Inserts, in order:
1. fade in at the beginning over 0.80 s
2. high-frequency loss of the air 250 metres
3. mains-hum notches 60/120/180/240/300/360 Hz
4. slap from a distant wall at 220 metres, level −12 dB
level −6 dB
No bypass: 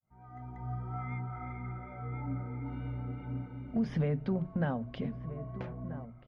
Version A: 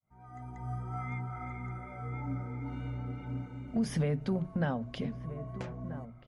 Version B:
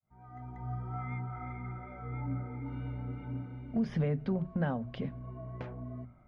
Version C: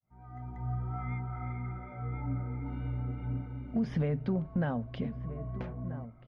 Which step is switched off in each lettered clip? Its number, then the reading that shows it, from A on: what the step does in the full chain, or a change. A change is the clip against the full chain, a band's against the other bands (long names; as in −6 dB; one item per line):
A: 2, 2 kHz band +2.0 dB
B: 4, echo-to-direct ratio −16.0 dB to none audible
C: 3, 125 Hz band +2.0 dB